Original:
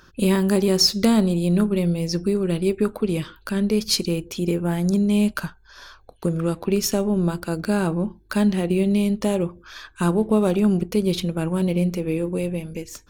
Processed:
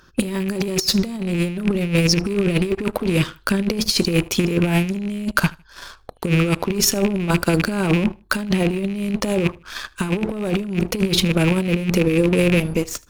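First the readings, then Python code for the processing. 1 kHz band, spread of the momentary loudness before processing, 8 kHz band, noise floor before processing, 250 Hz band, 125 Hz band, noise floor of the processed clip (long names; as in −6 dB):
+3.0 dB, 9 LU, +4.5 dB, −53 dBFS, +0.5 dB, +3.0 dB, −51 dBFS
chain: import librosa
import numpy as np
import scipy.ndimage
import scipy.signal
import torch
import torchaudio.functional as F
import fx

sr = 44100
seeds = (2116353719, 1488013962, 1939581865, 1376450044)

y = fx.rattle_buzz(x, sr, strikes_db=-28.0, level_db=-22.0)
y = fx.leveller(y, sr, passes=2)
y = fx.over_compress(y, sr, threshold_db=-17.0, ratio=-0.5)
y = fx.echo_feedback(y, sr, ms=77, feedback_pct=28, wet_db=-24)
y = F.gain(torch.from_numpy(y), -1.0).numpy()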